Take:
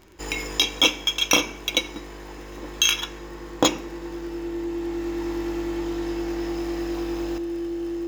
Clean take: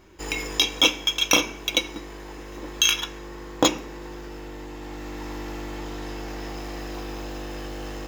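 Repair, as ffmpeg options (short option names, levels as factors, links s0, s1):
-af "adeclick=t=4,bandreject=f=340:w=30,asetnsamples=n=441:p=0,asendcmd='7.38 volume volume 8dB',volume=1"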